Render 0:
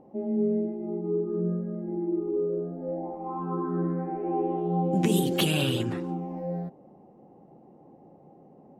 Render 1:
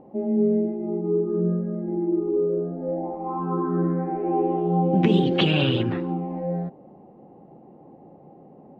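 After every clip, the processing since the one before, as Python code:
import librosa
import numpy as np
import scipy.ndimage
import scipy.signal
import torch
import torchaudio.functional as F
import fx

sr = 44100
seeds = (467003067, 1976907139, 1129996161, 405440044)

y = scipy.signal.sosfilt(scipy.signal.butter(4, 3600.0, 'lowpass', fs=sr, output='sos'), x)
y = F.gain(torch.from_numpy(y), 5.0).numpy()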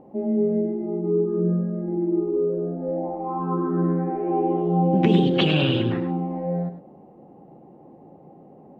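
y = x + 10.0 ** (-9.5 / 20.0) * np.pad(x, (int(103 * sr / 1000.0), 0))[:len(x)]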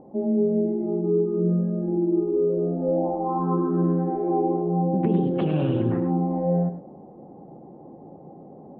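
y = scipy.signal.sosfilt(scipy.signal.butter(2, 1100.0, 'lowpass', fs=sr, output='sos'), x)
y = fx.rider(y, sr, range_db=4, speed_s=0.5)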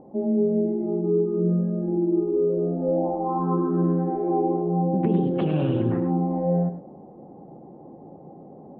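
y = x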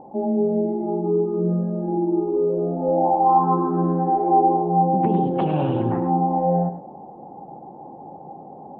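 y = fx.peak_eq(x, sr, hz=850.0, db=14.5, octaves=0.61)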